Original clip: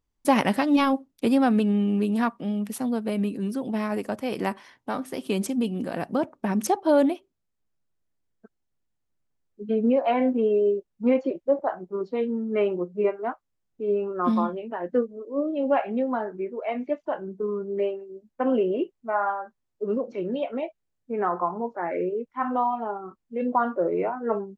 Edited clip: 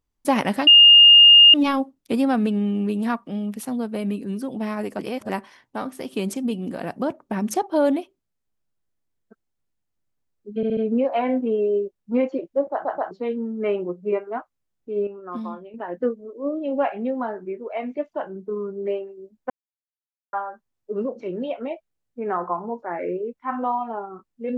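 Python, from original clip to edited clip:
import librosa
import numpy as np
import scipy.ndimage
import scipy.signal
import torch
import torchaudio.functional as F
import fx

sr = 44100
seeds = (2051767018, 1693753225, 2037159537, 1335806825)

y = fx.edit(x, sr, fx.insert_tone(at_s=0.67, length_s=0.87, hz=2830.0, db=-6.5),
    fx.reverse_span(start_s=4.12, length_s=0.3),
    fx.stutter(start_s=9.69, slice_s=0.07, count=4),
    fx.stutter_over(start_s=11.64, slice_s=0.13, count=3),
    fx.clip_gain(start_s=13.99, length_s=0.67, db=-8.5),
    fx.silence(start_s=18.42, length_s=0.83), tone=tone)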